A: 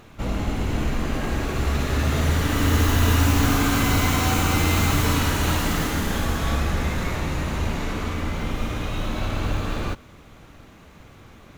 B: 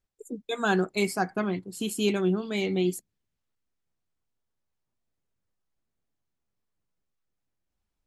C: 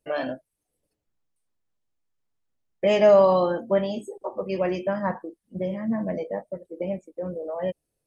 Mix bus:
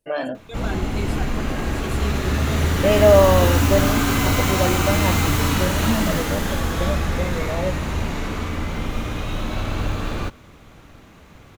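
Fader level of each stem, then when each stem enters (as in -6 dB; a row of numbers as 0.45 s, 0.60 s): +1.0 dB, -7.5 dB, +2.5 dB; 0.35 s, 0.00 s, 0.00 s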